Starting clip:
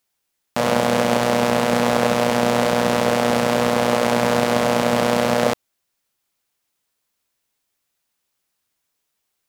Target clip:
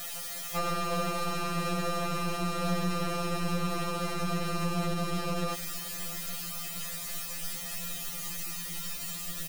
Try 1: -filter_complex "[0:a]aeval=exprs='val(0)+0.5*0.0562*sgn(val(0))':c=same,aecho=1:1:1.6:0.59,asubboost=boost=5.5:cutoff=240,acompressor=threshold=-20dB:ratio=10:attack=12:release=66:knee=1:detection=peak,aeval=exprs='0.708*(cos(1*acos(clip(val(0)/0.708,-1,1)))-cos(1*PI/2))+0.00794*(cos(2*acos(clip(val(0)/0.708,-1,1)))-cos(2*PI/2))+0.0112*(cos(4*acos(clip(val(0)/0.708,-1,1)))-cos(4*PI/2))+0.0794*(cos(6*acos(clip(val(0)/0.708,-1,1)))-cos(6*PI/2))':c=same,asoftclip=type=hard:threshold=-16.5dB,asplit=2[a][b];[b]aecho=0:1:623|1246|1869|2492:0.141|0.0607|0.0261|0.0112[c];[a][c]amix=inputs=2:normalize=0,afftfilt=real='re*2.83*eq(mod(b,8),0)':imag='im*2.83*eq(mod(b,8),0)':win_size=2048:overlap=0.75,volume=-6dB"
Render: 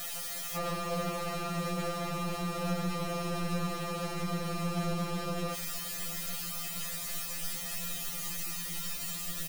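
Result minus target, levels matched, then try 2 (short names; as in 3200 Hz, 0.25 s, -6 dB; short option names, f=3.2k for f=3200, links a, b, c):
hard clip: distortion +17 dB
-filter_complex "[0:a]aeval=exprs='val(0)+0.5*0.0562*sgn(val(0))':c=same,aecho=1:1:1.6:0.59,asubboost=boost=5.5:cutoff=240,acompressor=threshold=-20dB:ratio=10:attack=12:release=66:knee=1:detection=peak,aeval=exprs='0.708*(cos(1*acos(clip(val(0)/0.708,-1,1)))-cos(1*PI/2))+0.00794*(cos(2*acos(clip(val(0)/0.708,-1,1)))-cos(2*PI/2))+0.0112*(cos(4*acos(clip(val(0)/0.708,-1,1)))-cos(4*PI/2))+0.0794*(cos(6*acos(clip(val(0)/0.708,-1,1)))-cos(6*PI/2))':c=same,asoftclip=type=hard:threshold=-8dB,asplit=2[a][b];[b]aecho=0:1:623|1246|1869|2492:0.141|0.0607|0.0261|0.0112[c];[a][c]amix=inputs=2:normalize=0,afftfilt=real='re*2.83*eq(mod(b,8),0)':imag='im*2.83*eq(mod(b,8),0)':win_size=2048:overlap=0.75,volume=-6dB"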